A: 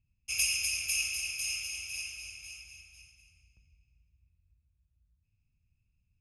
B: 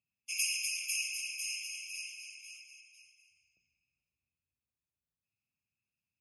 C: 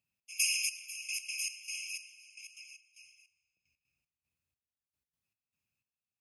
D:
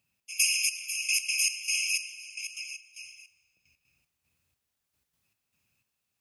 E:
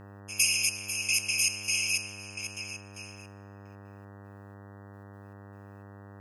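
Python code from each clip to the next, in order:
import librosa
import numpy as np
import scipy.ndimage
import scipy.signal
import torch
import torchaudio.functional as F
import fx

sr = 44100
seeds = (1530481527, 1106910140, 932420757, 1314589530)

y1 = scipy.signal.sosfilt(scipy.signal.butter(2, 320.0, 'highpass', fs=sr, output='sos'), x)
y1 = fx.spec_gate(y1, sr, threshold_db=-25, keep='strong')
y1 = y1 * librosa.db_to_amplitude(-3.5)
y2 = fx.step_gate(y1, sr, bpm=152, pattern='xx..xxx....x.', floor_db=-12.0, edge_ms=4.5)
y2 = y2 * librosa.db_to_amplitude(3.0)
y3 = fx.rider(y2, sr, range_db=5, speed_s=0.5)
y3 = y3 * librosa.db_to_amplitude(8.0)
y4 = fx.dmg_buzz(y3, sr, base_hz=100.0, harmonics=19, level_db=-48.0, tilt_db=-5, odd_only=False)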